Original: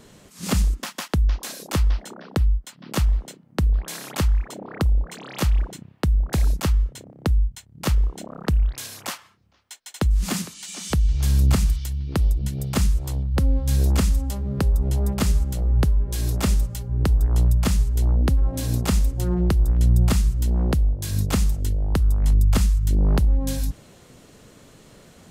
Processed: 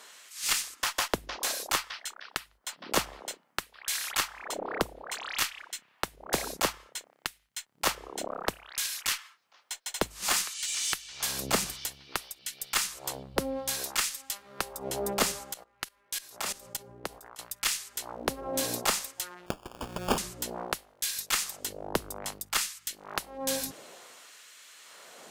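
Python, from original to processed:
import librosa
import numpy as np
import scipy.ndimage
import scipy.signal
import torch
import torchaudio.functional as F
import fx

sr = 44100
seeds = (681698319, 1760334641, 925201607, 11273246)

y = fx.filter_lfo_highpass(x, sr, shape='sine', hz=0.58, low_hz=450.0, high_hz=1900.0, q=0.93)
y = fx.level_steps(y, sr, step_db=18, at=(15.52, 17.39))
y = fx.sample_hold(y, sr, seeds[0], rate_hz=2000.0, jitter_pct=0, at=(19.46, 20.18))
y = fx.cheby_harmonics(y, sr, harmonics=(5, 6), levels_db=(-20, -22), full_scale_db=-11.0)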